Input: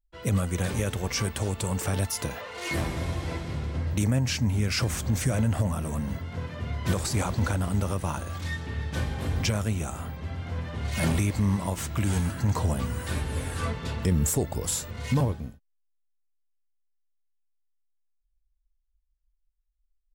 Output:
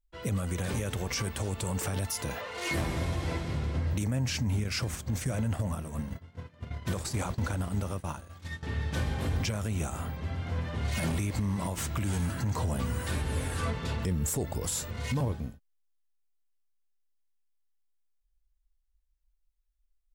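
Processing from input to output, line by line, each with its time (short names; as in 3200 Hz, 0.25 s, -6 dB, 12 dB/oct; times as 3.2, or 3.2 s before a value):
4.64–8.63 expander -25 dBFS
whole clip: limiter -22 dBFS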